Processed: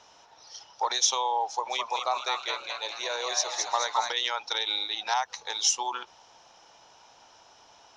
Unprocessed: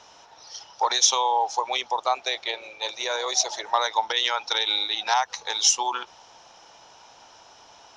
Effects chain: 1.45–4.14 s: frequency-shifting echo 213 ms, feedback 53%, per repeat +120 Hz, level -4 dB; trim -5 dB

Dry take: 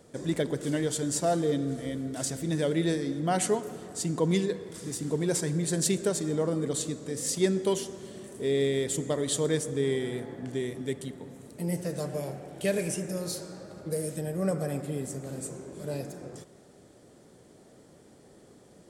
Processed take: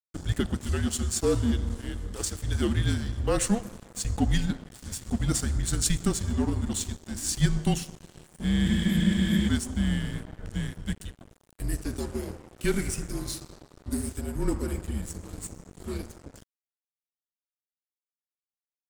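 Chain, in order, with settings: spectral replace 8.68–9.46 s, 280–11000 Hz before; frequency shift -220 Hz; crossover distortion -42.5 dBFS; trim +3 dB

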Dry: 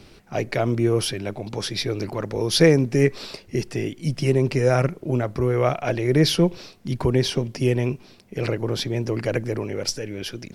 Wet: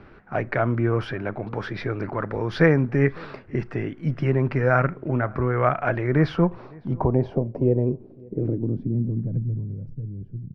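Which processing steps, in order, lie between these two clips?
dynamic bell 420 Hz, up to -5 dB, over -29 dBFS, Q 1.3; low-pass sweep 1.5 kHz -> 140 Hz, 6.09–9.68 s; echo from a far wall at 95 m, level -25 dB; on a send at -20 dB: reverberation, pre-delay 6 ms

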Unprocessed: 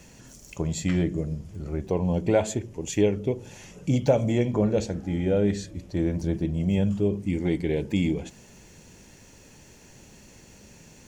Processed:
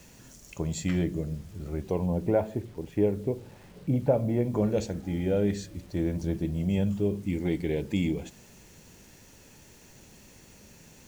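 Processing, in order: 2.06–4.54 s: low-pass 1.4 kHz 12 dB/octave; bit crusher 9-bit; trim -3 dB

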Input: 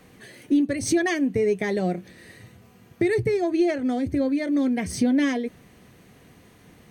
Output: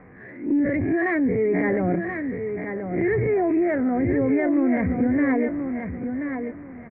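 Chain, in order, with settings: reverse spectral sustain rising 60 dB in 0.37 s; steep low-pass 2.2 kHz 72 dB/octave; transient shaper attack -6 dB, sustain +6 dB; peak limiter -19 dBFS, peak gain reduction 7 dB; feedback delay 1030 ms, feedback 23%, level -7 dB; trim +3.5 dB

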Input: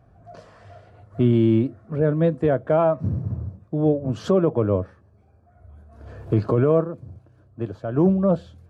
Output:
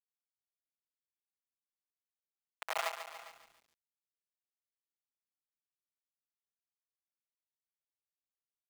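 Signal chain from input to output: Doppler pass-by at 2.69 s, 21 m/s, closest 2.6 m; differentiator; gated-style reverb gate 220 ms rising, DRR -3.5 dB; bit crusher 5-bit; on a send: delay 401 ms -23 dB; on the sum: peak limiter -28.5 dBFS, peak gain reduction 5 dB; high-pass 660 Hz 24 dB/octave; treble shelf 3.3 kHz -7 dB; bit-crushed delay 142 ms, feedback 55%, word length 11-bit, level -9 dB; trim +7 dB

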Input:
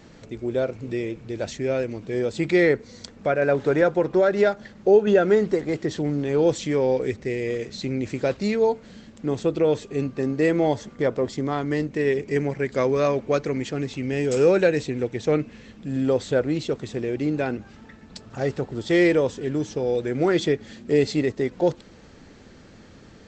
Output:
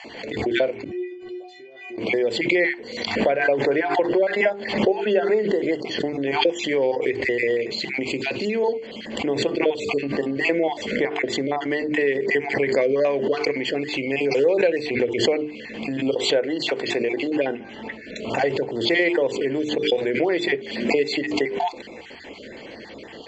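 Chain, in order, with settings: random holes in the spectrogram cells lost 28%; hum notches 50/100/150/200/250/300/350/400/450 Hz; 8.10–8.55 s: time-frequency box 570–2400 Hz -7 dB; 16.12–17.44 s: bass shelf 180 Hz -11 dB; compression 3:1, threshold -35 dBFS, peak gain reduction 16 dB; 0.84–1.98 s: inharmonic resonator 360 Hz, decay 0.4 s, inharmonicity 0.008; reverberation, pre-delay 3 ms, DRR 18.5 dB; swell ahead of each attack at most 63 dB/s; trim +4 dB

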